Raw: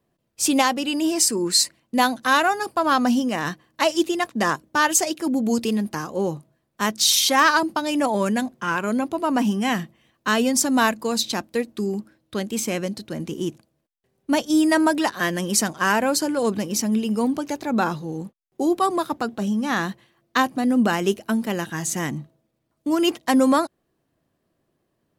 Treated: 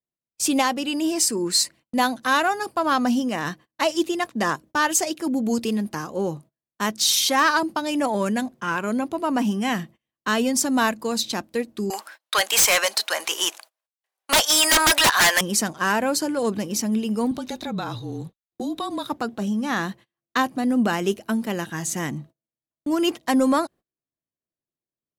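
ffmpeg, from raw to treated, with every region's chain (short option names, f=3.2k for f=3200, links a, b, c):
-filter_complex "[0:a]asettb=1/sr,asplit=3[a][b][c];[a]atrim=end=11.904[d];[b]atrim=start=11.9:end=15.41,asetpts=PTS-STARTPTS,afade=t=in:d=0.004:c=qsin,afade=t=out:st=3.506:d=0.004:c=qsin,highpass=f=790:w=0.5412,highpass=f=790:w=1.3066,aeval=exprs='0.316*sin(PI/2*6.31*val(0)/0.316)':c=same[e];[c]atrim=start=15.406[f];[d][e]acrossfade=d=0.004:c1=hsin:c2=qsin[g];[g][f]acrossfade=d=0.004:c1=qsin:c2=hsin,asettb=1/sr,asplit=3[h][i][j];[h]atrim=end=17.314[k];[i]atrim=start=17.31:end=19.07,asetpts=PTS-STARTPTS,afade=t=in:d=0.004:c=qsin,afade=t=out:st=1.756:d=0.004:c=qsin,equalizer=f=3.8k:t=o:w=0.22:g=14.5,acompressor=threshold=-24dB:ratio=4:attack=3.2:release=140:knee=1:detection=peak,afreqshift=-35[l];[j]atrim=start=19.066[m];[k][l]acrossfade=d=0.004:c1=hsin:c2=qsin[n];[n][m]acrossfade=d=0.004:c1=qsin:c2=hsin,agate=range=-25dB:threshold=-42dB:ratio=16:detection=peak,acontrast=31,volume=-6.5dB"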